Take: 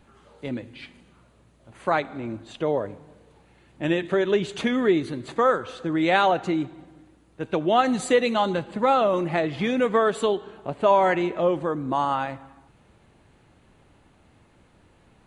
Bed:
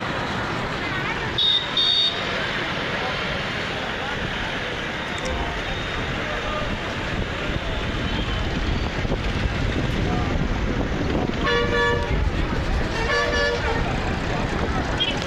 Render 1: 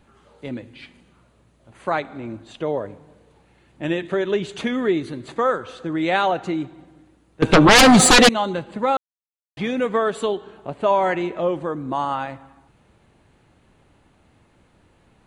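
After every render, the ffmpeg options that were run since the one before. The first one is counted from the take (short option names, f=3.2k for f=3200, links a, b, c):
-filter_complex "[0:a]asettb=1/sr,asplit=3[a][b][c];[a]atrim=end=7.424[d];[b]atrim=start=7.42:end=8.29,asetpts=PTS-STARTPTS,afade=t=in:d=0.004:c=qsin,afade=t=out:st=0.866:d=0.004:c=qsin,aeval=exprs='0.447*sin(PI/2*6.31*val(0)/0.447)':c=same[e];[c]atrim=start=8.286[f];[d][e]acrossfade=d=0.004:c1=hsin:c2=qsin[g];[g][f]acrossfade=d=0.004:c1=qsin:c2=hsin,asplit=3[h][i][j];[h]atrim=end=8.97,asetpts=PTS-STARTPTS,afade=t=out:st=8.966:d=0.004:c=hsin[k];[i]atrim=start=8.97:end=9.57,asetpts=PTS-STARTPTS,volume=0[l];[j]atrim=start=9.57,asetpts=PTS-STARTPTS,afade=t=in:d=0.004:c=hsin[m];[k][l][m]concat=n=3:v=0:a=1"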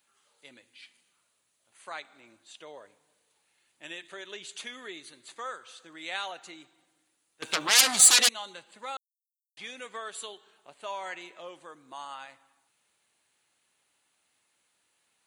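-af "aderivative"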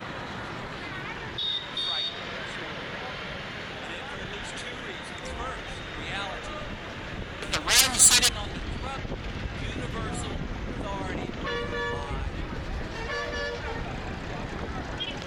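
-filter_complex "[1:a]volume=-10.5dB[a];[0:a][a]amix=inputs=2:normalize=0"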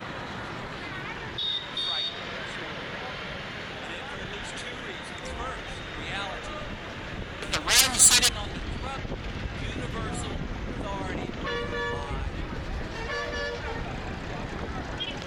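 -af anull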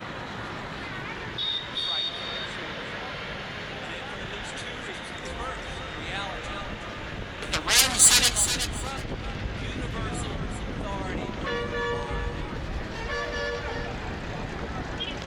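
-filter_complex "[0:a]asplit=2[a][b];[b]adelay=19,volume=-12.5dB[c];[a][c]amix=inputs=2:normalize=0,aecho=1:1:368|736:0.398|0.0597"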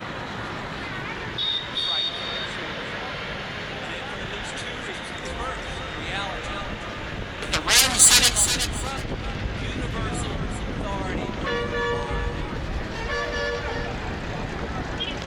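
-af "volume=3.5dB,alimiter=limit=-2dB:level=0:latency=1"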